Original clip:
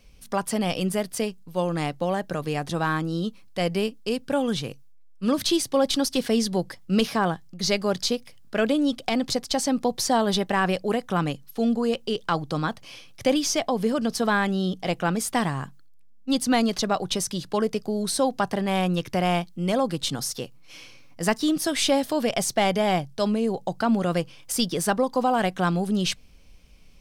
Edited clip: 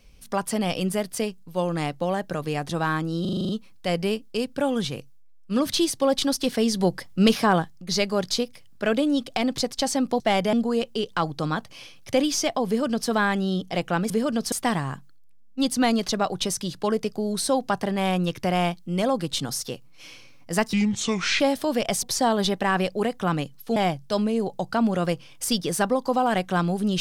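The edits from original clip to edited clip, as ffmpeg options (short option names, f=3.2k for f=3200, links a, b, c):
-filter_complex "[0:a]asplit=18[a][b][c][d][e][f][g][h][i][j][k][l][m][n][o][p][q][r];[a]atrim=end=3.252[s];[b]atrim=start=3.208:end=3.252[t];[c]atrim=start=3.208:end=3.252[u];[d]atrim=start=3.208:end=3.252[v];[e]atrim=start=3.208:end=3.252[w];[f]atrim=start=3.208:end=3.252[x];[g]atrim=start=3.208:end=3.252[y];[h]atrim=start=3.208:end=6.482[z];[i]atrim=start=6.478:end=7.422,asetpts=PTS-STARTPTS,volume=3.5dB[aa];[j]atrim=start=7.418:end=9.922[ab];[k]atrim=start=22.508:end=22.842[ac];[l]atrim=start=11.648:end=15.222[ad];[m]atrim=start=13.788:end=14.212[ae];[n]atrim=start=15.218:end=21.434[af];[o]atrim=start=21.43:end=21.88,asetpts=PTS-STARTPTS,asetrate=29547,aresample=44100,atrim=end_sample=29619,asetpts=PTS-STARTPTS[ag];[p]atrim=start=21.876:end=22.512[ah];[q]atrim=start=9.918:end=11.652[ai];[r]atrim=start=22.838[aj];[s][t]acrossfade=d=0.004:c1=hsin:c2=hsin[ak];[ak][u]acrossfade=d=0.004:c1=hsin:c2=hsin[al];[al][v]acrossfade=d=0.004:c1=hsin:c2=hsin[am];[am][w]acrossfade=d=0.004:c1=hsin:c2=hsin[an];[an][x]acrossfade=d=0.004:c1=hsin:c2=hsin[ao];[ao][y]acrossfade=d=0.004:c1=hsin:c2=hsin[ap];[ap][z]acrossfade=d=0.004:c1=hsin:c2=hsin[aq];[aq][aa]acrossfade=d=0.004:c1=hsin:c2=hsin[ar];[ar][ab]acrossfade=d=0.004:c1=hsin:c2=hsin[as];[as][ac]acrossfade=d=0.004:c1=hsin:c2=hsin[at];[at][ad]acrossfade=d=0.004:c1=hsin:c2=hsin[au];[au][ae]acrossfade=d=0.004:c1=hsin:c2=hsin[av];[av][af]acrossfade=d=0.004:c1=hsin:c2=hsin[aw];[aw][ag]acrossfade=d=0.004:c1=hsin:c2=hsin[ax];[ax][ah]acrossfade=d=0.004:c1=hsin:c2=hsin[ay];[ay][ai]acrossfade=d=0.004:c1=hsin:c2=hsin[az];[az][aj]acrossfade=d=0.004:c1=hsin:c2=hsin"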